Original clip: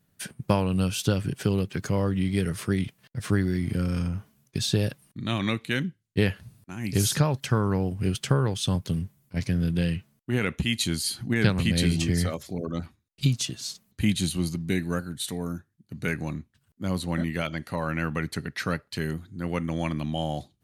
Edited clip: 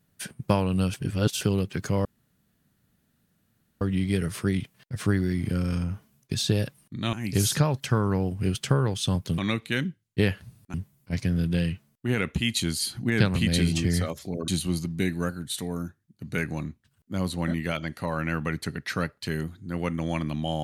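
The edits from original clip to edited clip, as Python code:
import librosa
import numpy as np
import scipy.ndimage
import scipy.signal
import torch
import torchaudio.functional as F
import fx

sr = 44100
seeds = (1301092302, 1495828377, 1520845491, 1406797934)

y = fx.edit(x, sr, fx.reverse_span(start_s=0.94, length_s=0.47),
    fx.insert_room_tone(at_s=2.05, length_s=1.76),
    fx.move(start_s=5.37, length_s=1.36, to_s=8.98),
    fx.cut(start_s=12.72, length_s=1.46), tone=tone)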